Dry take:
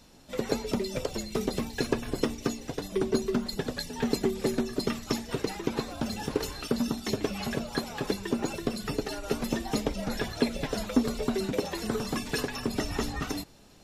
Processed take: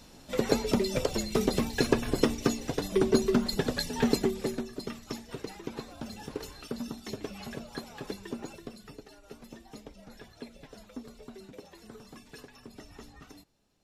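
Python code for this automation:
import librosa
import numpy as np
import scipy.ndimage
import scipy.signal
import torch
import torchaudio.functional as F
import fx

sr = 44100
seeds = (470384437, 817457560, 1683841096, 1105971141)

y = fx.gain(x, sr, db=fx.line((4.06, 3.0), (4.73, -8.5), (8.31, -8.5), (9.09, -18.0)))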